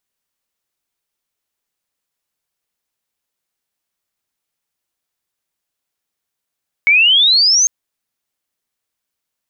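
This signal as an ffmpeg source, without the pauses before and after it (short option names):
-f lavfi -i "aevalsrc='pow(10,(-7-2*t/0.8)/20)*sin(2*PI*2200*0.8/log(6500/2200)*(exp(log(6500/2200)*t/0.8)-1))':d=0.8:s=44100"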